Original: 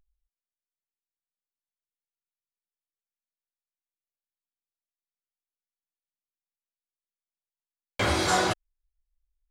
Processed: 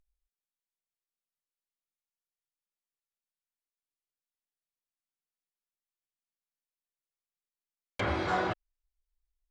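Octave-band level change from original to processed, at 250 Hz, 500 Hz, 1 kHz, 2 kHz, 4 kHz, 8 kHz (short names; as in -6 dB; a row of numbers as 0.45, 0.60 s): -5.0, -5.0, -5.0, -6.0, -12.5, -22.5 dB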